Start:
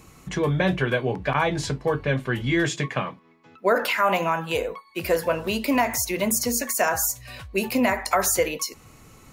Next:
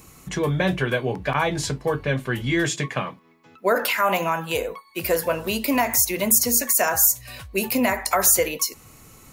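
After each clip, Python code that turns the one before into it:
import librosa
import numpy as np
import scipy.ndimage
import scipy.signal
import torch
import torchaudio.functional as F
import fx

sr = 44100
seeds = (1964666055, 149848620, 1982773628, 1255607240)

y = fx.high_shelf(x, sr, hz=8000.0, db=11.5)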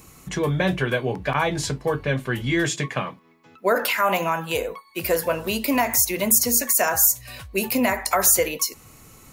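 y = x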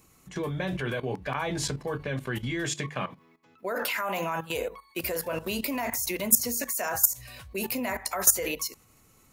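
y = fx.level_steps(x, sr, step_db=15)
y = fx.hum_notches(y, sr, base_hz=50, count=3)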